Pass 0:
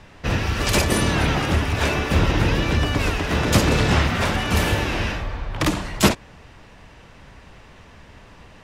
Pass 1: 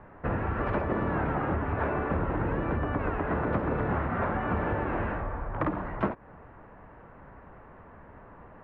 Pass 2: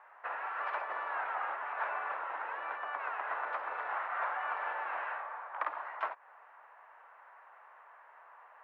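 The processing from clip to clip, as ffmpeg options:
-af "lowpass=f=1500:w=0.5412,lowpass=f=1500:w=1.3066,lowshelf=f=190:g=-7.5,acompressor=threshold=0.0562:ratio=6"
-af "highpass=f=790:w=0.5412,highpass=f=790:w=1.3066,volume=0.841"

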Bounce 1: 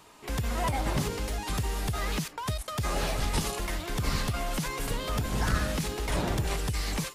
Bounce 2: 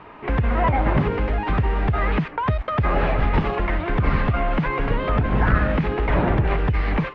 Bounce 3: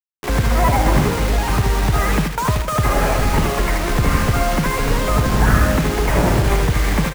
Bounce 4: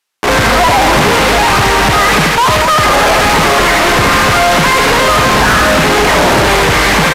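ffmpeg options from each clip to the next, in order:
-filter_complex "[0:a]lowpass=f=2300:w=0.5412,lowpass=f=2300:w=1.3066,asplit=2[s0][s1];[s1]acompressor=threshold=0.0178:ratio=6,volume=0.891[s2];[s0][s2]amix=inputs=2:normalize=0,volume=2.37"
-filter_complex "[0:a]acrusher=bits=4:mix=0:aa=0.000001,asplit=2[s0][s1];[s1]aecho=0:1:76|239|462:0.501|0.2|0.133[s2];[s0][s2]amix=inputs=2:normalize=0,volume=1.33"
-filter_complex "[0:a]asplit=2[s0][s1];[s1]highpass=f=720:p=1,volume=70.8,asoftclip=type=tanh:threshold=0.891[s2];[s0][s2]amix=inputs=2:normalize=0,lowpass=f=4600:p=1,volume=0.501,aresample=32000,aresample=44100,volume=0.891"

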